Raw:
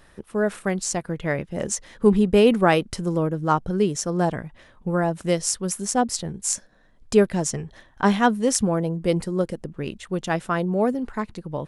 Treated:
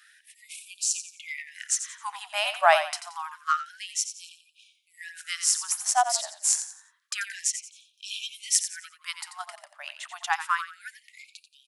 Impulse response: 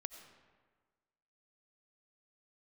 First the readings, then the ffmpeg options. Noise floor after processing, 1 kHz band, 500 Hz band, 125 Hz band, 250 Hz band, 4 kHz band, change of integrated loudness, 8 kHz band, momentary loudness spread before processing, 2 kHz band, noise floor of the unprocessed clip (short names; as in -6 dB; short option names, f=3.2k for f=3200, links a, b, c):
-67 dBFS, -2.0 dB, -13.5 dB, under -40 dB, under -40 dB, +2.0 dB, -4.5 dB, +2.0 dB, 11 LU, -1.0 dB, -55 dBFS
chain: -filter_complex "[0:a]asplit=5[a][b][c][d][e];[b]adelay=88,afreqshift=-33,volume=-10dB[f];[c]adelay=176,afreqshift=-66,volume=-19.9dB[g];[d]adelay=264,afreqshift=-99,volume=-29.8dB[h];[e]adelay=352,afreqshift=-132,volume=-39.7dB[i];[a][f][g][h][i]amix=inputs=5:normalize=0,afftfilt=real='re*gte(b*sr/1024,570*pow(2400/570,0.5+0.5*sin(2*PI*0.28*pts/sr)))':imag='im*gte(b*sr/1024,570*pow(2400/570,0.5+0.5*sin(2*PI*0.28*pts/sr)))':win_size=1024:overlap=0.75,volume=1.5dB"